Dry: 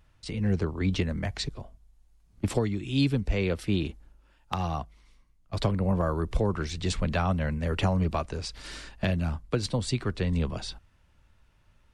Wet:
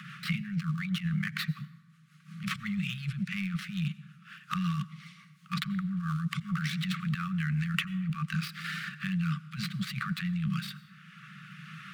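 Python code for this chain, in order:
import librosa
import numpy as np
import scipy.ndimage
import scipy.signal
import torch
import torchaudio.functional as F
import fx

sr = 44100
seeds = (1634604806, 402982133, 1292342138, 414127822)

y = fx.dead_time(x, sr, dead_ms=0.071)
y = scipy.signal.sosfilt(scipy.signal.butter(12, 150.0, 'highpass', fs=sr, output='sos'), y)
y = fx.low_shelf(y, sr, hz=240.0, db=-3.0)
y = fx.hpss(y, sr, part='harmonic', gain_db=-3)
y = fx.bass_treble(y, sr, bass_db=7, treble_db=-14)
y = fx.over_compress(y, sr, threshold_db=-35.0, ratio=-1.0)
y = fx.rotary_switch(y, sr, hz=5.5, then_hz=1.1, switch_at_s=7.58)
y = fx.brickwall_bandstop(y, sr, low_hz=200.0, high_hz=1100.0)
y = fx.rev_plate(y, sr, seeds[0], rt60_s=0.92, hf_ratio=0.6, predelay_ms=75, drr_db=19.0)
y = fx.band_squash(y, sr, depth_pct=70)
y = y * librosa.db_to_amplitude(8.5)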